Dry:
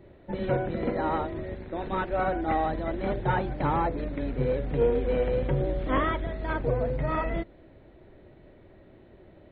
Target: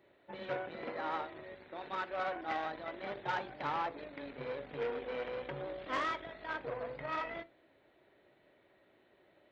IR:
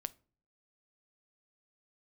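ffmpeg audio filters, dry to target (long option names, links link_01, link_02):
-filter_complex "[0:a]aeval=exprs='0.237*(cos(1*acos(clip(val(0)/0.237,-1,1)))-cos(1*PI/2))+0.0133*(cos(8*acos(clip(val(0)/0.237,-1,1)))-cos(8*PI/2))':channel_layout=same,highpass=frequency=1300:poles=1[link_01];[1:a]atrim=start_sample=2205[link_02];[link_01][link_02]afir=irnorm=-1:irlink=0,volume=-1.5dB"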